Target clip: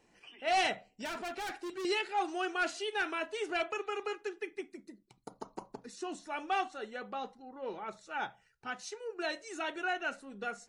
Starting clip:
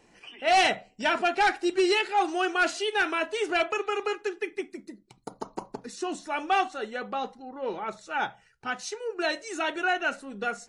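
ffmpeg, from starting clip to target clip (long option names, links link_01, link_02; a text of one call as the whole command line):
ffmpeg -i in.wav -filter_complex "[0:a]asettb=1/sr,asplit=3[link_01][link_02][link_03];[link_01]atrim=end=1.054[link_04];[link_02]atrim=start=1.05:end=1.85,asetpts=PTS-STARTPTS,afade=type=in:duration=0.004:curve=qsin,afade=type=out:start_time=0.796:duration=0.004:curve=qsin,volume=29dB,asoftclip=hard,volume=-29dB[link_05];[link_03]atrim=start=1.846[link_06];[link_04][link_05]acrossfade=duration=0.004:curve1=hsin:curve2=qsin[link_07];[link_07][link_06]acrossfade=duration=0.004:curve1=qsin:curve2=hsin,volume=-8dB" out.wav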